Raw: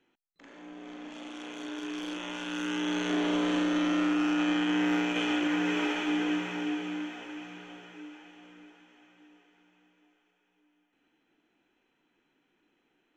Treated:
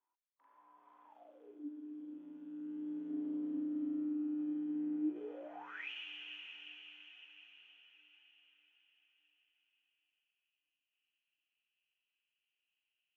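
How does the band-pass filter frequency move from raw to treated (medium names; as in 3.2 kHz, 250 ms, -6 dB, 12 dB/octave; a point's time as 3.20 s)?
band-pass filter, Q 14
1.05 s 1 kHz
1.70 s 270 Hz
4.99 s 270 Hz
5.58 s 750 Hz
5.90 s 2.8 kHz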